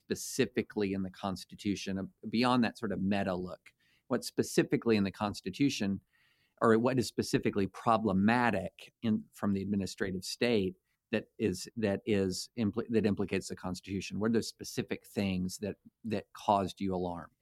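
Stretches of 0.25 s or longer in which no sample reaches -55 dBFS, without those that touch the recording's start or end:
3.69–4.1
5.99–6.58
10.73–11.12

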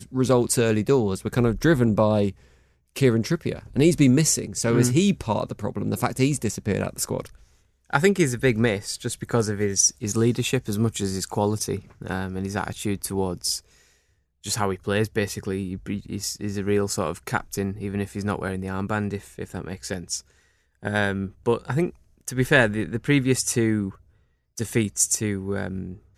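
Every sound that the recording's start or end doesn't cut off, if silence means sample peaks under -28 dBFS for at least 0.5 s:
2.96–7.25
7.93–13.58
14.46–20.18
20.85–23.89

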